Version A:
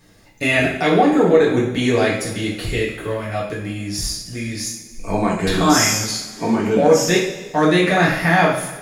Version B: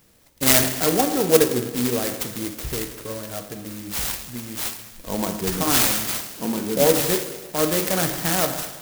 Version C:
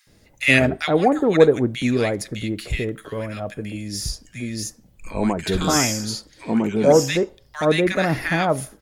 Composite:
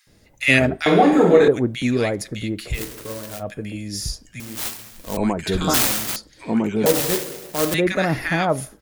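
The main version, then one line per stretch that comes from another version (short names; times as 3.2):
C
0.86–1.48 from A
2.78–3.39 from B, crossfade 0.10 s
4.4–5.17 from B
5.74–6.16 from B
6.86–7.74 from B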